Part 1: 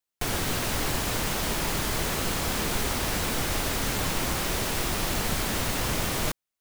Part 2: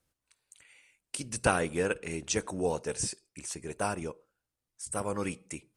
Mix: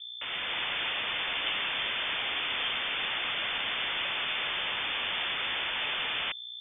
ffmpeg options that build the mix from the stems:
ffmpeg -i stem1.wav -i stem2.wav -filter_complex "[0:a]highpass=frequency=690:poles=1,dynaudnorm=framelen=120:gausssize=7:maxgain=10dB,asoftclip=type=tanh:threshold=-22dB,volume=-1.5dB[link_01];[1:a]volume=-11dB[link_02];[link_01][link_02]amix=inputs=2:normalize=0,highshelf=frequency=2000:gain=-6.5,aeval=exprs='val(0)+0.00891*(sin(2*PI*60*n/s)+sin(2*PI*2*60*n/s)/2+sin(2*PI*3*60*n/s)/3+sin(2*PI*4*60*n/s)/4+sin(2*PI*5*60*n/s)/5)':channel_layout=same,lowpass=frequency=3100:width_type=q:width=0.5098,lowpass=frequency=3100:width_type=q:width=0.6013,lowpass=frequency=3100:width_type=q:width=0.9,lowpass=frequency=3100:width_type=q:width=2.563,afreqshift=-3600" out.wav

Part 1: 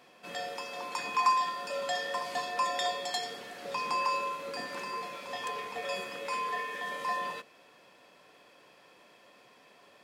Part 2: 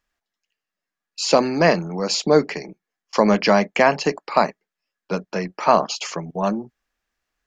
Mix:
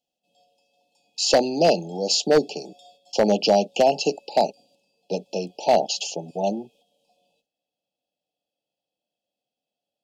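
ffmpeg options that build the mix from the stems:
ffmpeg -i stem1.wav -i stem2.wav -filter_complex "[0:a]equalizer=frequency=390:width=6.1:gain=-15,volume=-18.5dB[link_01];[1:a]highpass=frequency=400:poles=1,volume=1.5dB[link_02];[link_01][link_02]amix=inputs=2:normalize=0,asuperstop=centerf=1500:order=20:qfactor=0.84,agate=range=-7dB:threshold=-55dB:ratio=16:detection=peak,aeval=exprs='0.376*(abs(mod(val(0)/0.376+3,4)-2)-1)':channel_layout=same" out.wav

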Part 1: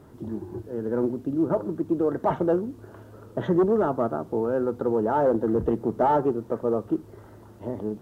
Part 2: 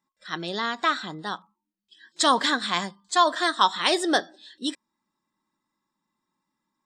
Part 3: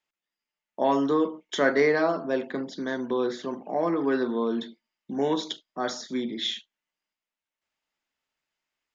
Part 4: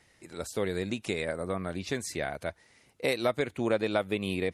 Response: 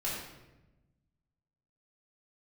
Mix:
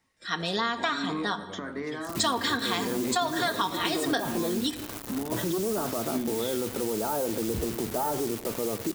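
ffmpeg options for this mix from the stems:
-filter_complex "[0:a]alimiter=limit=-23dB:level=0:latency=1:release=24,acrusher=bits=6:mix=0:aa=0.000001,crystalizer=i=2:c=0,adelay=1950,volume=1.5dB,asplit=2[link_01][link_02];[link_02]volume=-18.5dB[link_03];[1:a]aecho=1:1:4.3:0.65,alimiter=limit=-10dB:level=0:latency=1:release=300,volume=1.5dB,asplit=2[link_04][link_05];[link_05]volume=-14dB[link_06];[2:a]equalizer=frequency=1100:width=1.5:gain=12,alimiter=limit=-18.5dB:level=0:latency=1:release=281,lowshelf=frequency=370:width_type=q:width=1.5:gain=8.5,volume=-10dB,asplit=2[link_07][link_08];[link_08]volume=-20dB[link_09];[3:a]volume=-12dB[link_10];[4:a]atrim=start_sample=2205[link_11];[link_03][link_06][link_09]amix=inputs=3:normalize=0[link_12];[link_12][link_11]afir=irnorm=-1:irlink=0[link_13];[link_01][link_04][link_07][link_10][link_13]amix=inputs=5:normalize=0,acompressor=threshold=-25dB:ratio=4"

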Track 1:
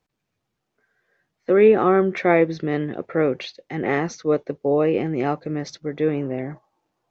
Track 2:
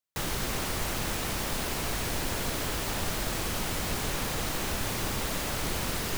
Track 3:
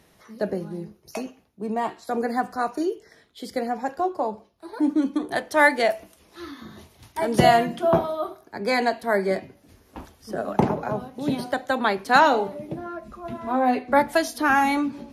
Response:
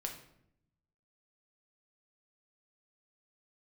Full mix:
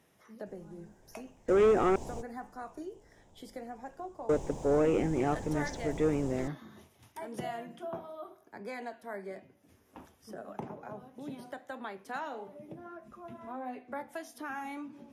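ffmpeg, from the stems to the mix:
-filter_complex "[0:a]asoftclip=type=tanh:threshold=-14dB,volume=-5.5dB,asplit=3[link_01][link_02][link_03];[link_01]atrim=end=1.96,asetpts=PTS-STARTPTS,afade=type=out:start_time=1.956:duration=0.004:curve=hsin[link_04];[link_02]atrim=start=1.96:end=4.29,asetpts=PTS-STARTPTS,volume=0[link_05];[link_03]atrim=start=4.29,asetpts=PTS-STARTPTS,afade=type=in:duration=0.004:curve=hsin[link_06];[link_04][link_05][link_06]concat=n=3:v=0:a=1,asplit=2[link_07][link_08];[1:a]firequalizer=gain_entry='entry(900,0);entry(1300,-21);entry(7100,-5);entry(12000,-27)':delay=0.05:min_phase=1,adelay=300,volume=-7.5dB[link_09];[2:a]highpass=89,acompressor=threshold=-37dB:ratio=2,flanger=delay=7.2:depth=3.7:regen=-82:speed=1.6:shape=triangular,volume=-4.5dB[link_10];[link_08]apad=whole_len=290078[link_11];[link_09][link_11]sidechaingate=range=-21dB:threshold=-60dB:ratio=16:detection=peak[link_12];[link_07][link_12][link_10]amix=inputs=3:normalize=0,equalizer=frequency=4300:width_type=o:width=0.27:gain=-9.5"

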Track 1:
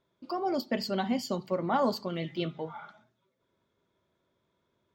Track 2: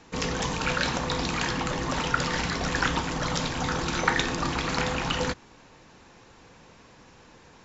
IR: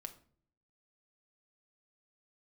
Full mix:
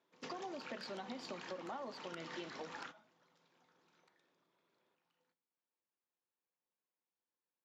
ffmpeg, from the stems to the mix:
-filter_complex "[0:a]volume=-4.5dB,asplit=2[link_01][link_02];[1:a]acompressor=threshold=-33dB:ratio=6,aeval=exprs='(mod(11.9*val(0)+1,2)-1)/11.9':channel_layout=same,volume=-6.5dB,afade=type=out:start_time=2.45:duration=0.62:silence=0.473151,afade=type=out:start_time=4.03:duration=0.44:silence=0.316228,asplit=2[link_03][link_04];[link_04]volume=-22.5dB[link_05];[link_02]apad=whole_len=337009[link_06];[link_03][link_06]sidechaingate=range=-33dB:threshold=-52dB:ratio=16:detection=peak[link_07];[2:a]atrim=start_sample=2205[link_08];[link_05][link_08]afir=irnorm=-1:irlink=0[link_09];[link_01][link_07][link_09]amix=inputs=3:normalize=0,highpass=270,lowpass=5800,acompressor=threshold=-43dB:ratio=6"

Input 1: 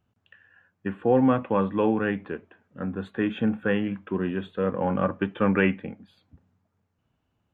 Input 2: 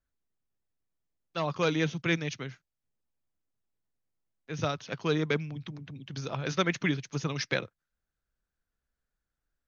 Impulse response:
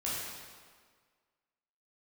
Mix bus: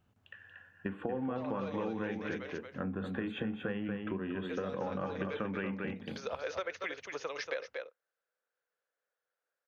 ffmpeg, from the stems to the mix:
-filter_complex "[0:a]acompressor=threshold=-28dB:ratio=3,bandreject=frequency=60:width_type=h:width=6,bandreject=frequency=120:width_type=h:width=6,bandreject=frequency=180:width_type=h:width=6,bandreject=frequency=240:width_type=h:width=6,bandreject=frequency=300:width_type=h:width=6,bandreject=frequency=360:width_type=h:width=6,bandreject=frequency=420:width_type=h:width=6,bandreject=frequency=480:width_type=h:width=6,acontrast=74,volume=-5dB,asplit=3[link_01][link_02][link_03];[link_02]volume=-6dB[link_04];[1:a]equalizer=frequency=1600:width=0.5:gain=10,acompressor=threshold=-31dB:ratio=1.5,highpass=frequency=500:width_type=q:width=4.9,volume=-9dB,asplit=2[link_05][link_06];[link_06]volume=-9dB[link_07];[link_03]apad=whole_len=426853[link_08];[link_05][link_08]sidechaincompress=threshold=-34dB:ratio=8:attack=31:release=247[link_09];[link_04][link_07]amix=inputs=2:normalize=0,aecho=0:1:233:1[link_10];[link_01][link_09][link_10]amix=inputs=3:normalize=0,acompressor=threshold=-34dB:ratio=4"

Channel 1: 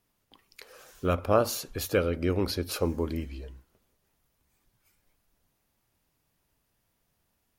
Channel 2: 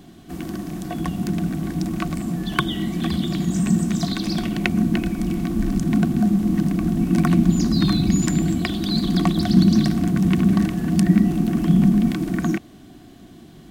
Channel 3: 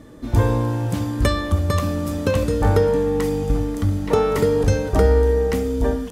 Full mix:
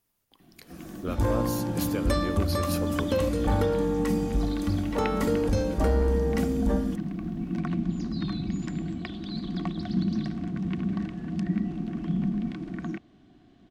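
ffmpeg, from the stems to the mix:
ffmpeg -i stem1.wav -i stem2.wav -i stem3.wav -filter_complex "[0:a]highshelf=frequency=6800:gain=8,alimiter=limit=-18dB:level=0:latency=1:release=459,volume=-4.5dB[link_01];[1:a]lowpass=4000,adelay=400,volume=-12dB[link_02];[2:a]aecho=1:1:3.6:0.55,asoftclip=type=tanh:threshold=-9.5dB,adelay=850,volume=-6.5dB[link_03];[link_01][link_02][link_03]amix=inputs=3:normalize=0" out.wav

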